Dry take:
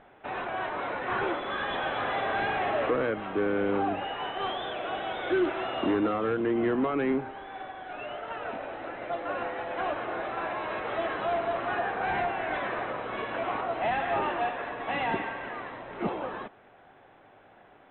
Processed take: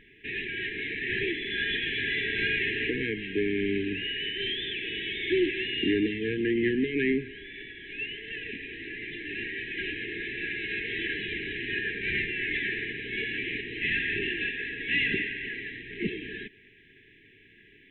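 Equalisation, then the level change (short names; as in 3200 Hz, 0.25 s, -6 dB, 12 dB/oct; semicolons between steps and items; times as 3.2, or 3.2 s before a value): brick-wall FIR band-stop 460–1600 Hz; low shelf 91 Hz +6 dB; bell 2500 Hz +11 dB 1.2 oct; 0.0 dB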